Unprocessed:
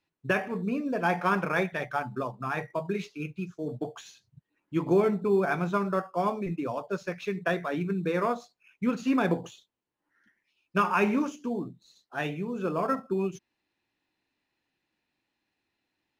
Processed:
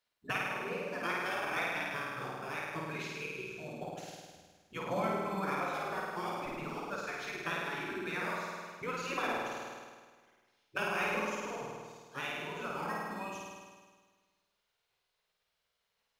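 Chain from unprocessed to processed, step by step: spectral gate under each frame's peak -10 dB weak; flutter echo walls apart 8.9 m, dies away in 1.5 s; in parallel at 0 dB: compression, threshold -39 dBFS, peak gain reduction 13.5 dB; on the sum: trim -5.5 dB

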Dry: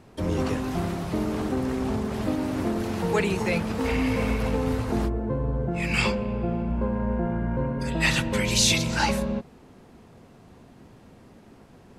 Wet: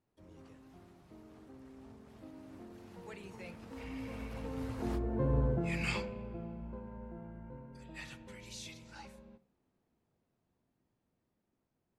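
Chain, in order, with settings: Doppler pass-by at 5.37 s, 7 m/s, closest 1.5 m; on a send: reverberation RT60 0.45 s, pre-delay 3 ms, DRR 12 dB; on the sum: trim -3.5 dB

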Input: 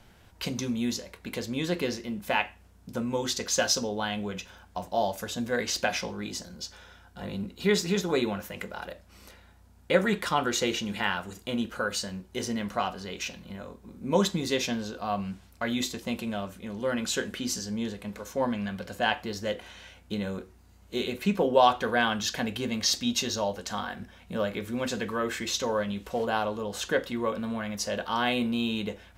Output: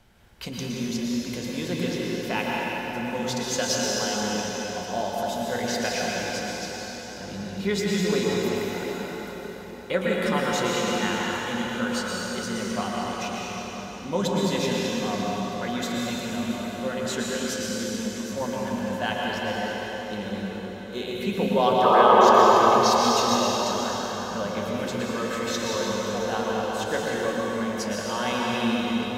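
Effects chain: painted sound noise, 21.83–22.42 s, 340–1300 Hz -16 dBFS; plate-style reverb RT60 5 s, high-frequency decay 0.8×, pre-delay 100 ms, DRR -4.5 dB; trim -3 dB

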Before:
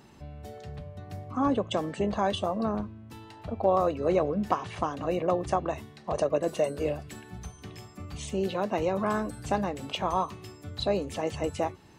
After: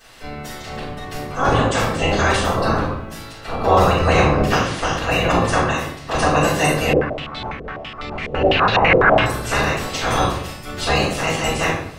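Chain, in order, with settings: spectral peaks clipped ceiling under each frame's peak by 25 dB; simulated room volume 140 m³, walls mixed, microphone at 5.1 m; 6.93–9.26 s: step-sequenced low-pass 12 Hz 480–3900 Hz; trim -5 dB

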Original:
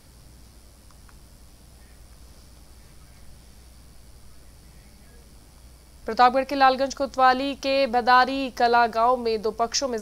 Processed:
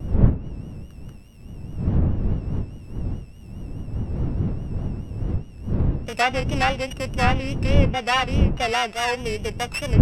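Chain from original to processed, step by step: sorted samples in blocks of 16 samples; wind noise 130 Hz -20 dBFS; low-pass that closes with the level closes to 2.5 kHz, closed at -10 dBFS; vibrato 4.8 Hz 83 cents; trim -3.5 dB

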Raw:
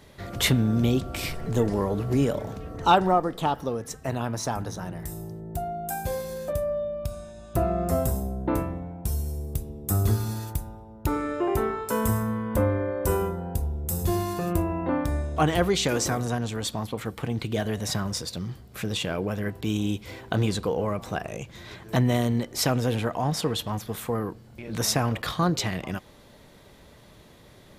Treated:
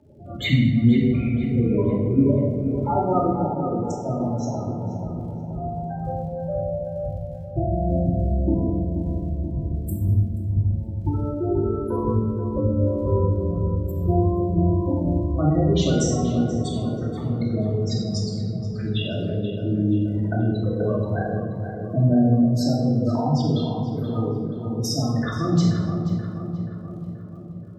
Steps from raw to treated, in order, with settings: local Wiener filter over 15 samples; high-pass 68 Hz; spectral gate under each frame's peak -10 dB strong; crackle 58 per s -51 dBFS; rotary cabinet horn 5.5 Hz, later 1 Hz, at 2.31 s; on a send: filtered feedback delay 480 ms, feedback 61%, low-pass 2 kHz, level -7.5 dB; on the sum: simulated room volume 930 m³, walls mixed, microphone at 2.6 m

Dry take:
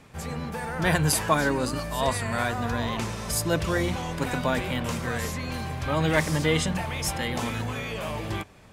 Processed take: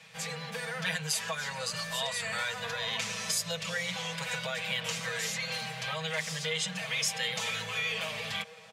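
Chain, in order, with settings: elliptic band-stop 220–450 Hz; dynamic bell 6.8 kHz, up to +4 dB, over -48 dBFS, Q 2.6; high-pass 82 Hz; comb 6.2 ms, depth 93%; feedback echo behind a band-pass 661 ms, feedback 72%, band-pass 540 Hz, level -21 dB; compression 4:1, threshold -28 dBFS, peak gain reduction 13 dB; frequency weighting D; trim -6.5 dB

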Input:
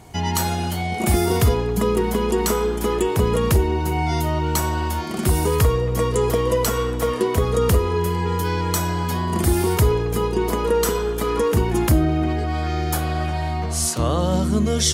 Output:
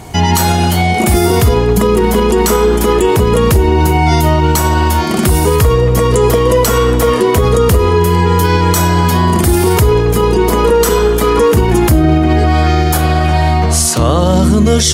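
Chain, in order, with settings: loudness maximiser +14.5 dB; trim -1 dB

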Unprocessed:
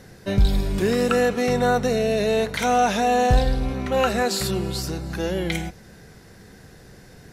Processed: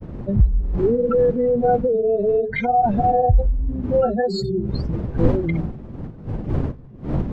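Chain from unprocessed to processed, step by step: spectral contrast enhancement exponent 3.2; wind noise 210 Hz -30 dBFS; granulator 99 ms, grains 20 per s, spray 15 ms, pitch spread up and down by 0 st; trim +4 dB

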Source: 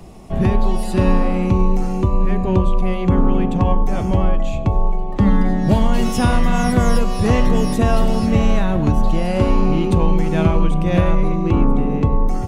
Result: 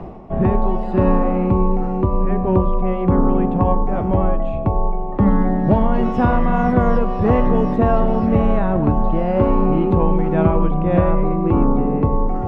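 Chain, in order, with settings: bass shelf 240 Hz -7.5 dB; reverse; upward compressor, threshold -24 dBFS; reverse; low-pass 1.2 kHz 12 dB/octave; trim +4.5 dB

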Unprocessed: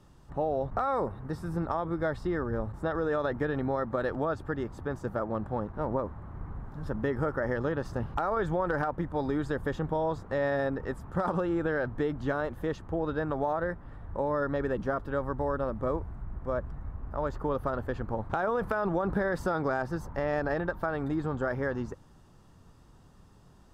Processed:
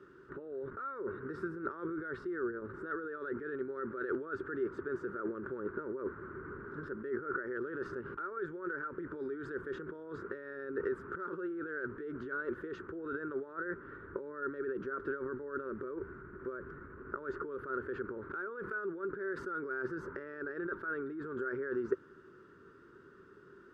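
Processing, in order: compressor with a negative ratio -37 dBFS, ratio -1; two resonant band-passes 750 Hz, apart 1.9 oct; trim +9.5 dB

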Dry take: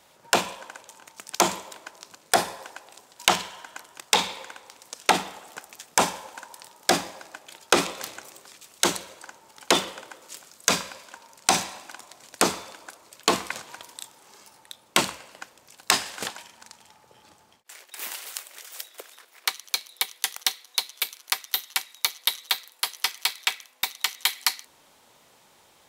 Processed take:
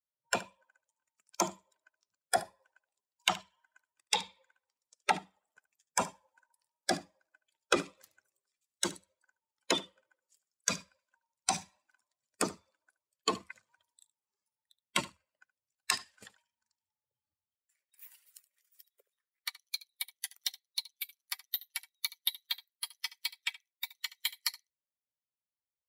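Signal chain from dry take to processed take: expander on every frequency bin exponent 2; delay 73 ms -18 dB; trim -5 dB

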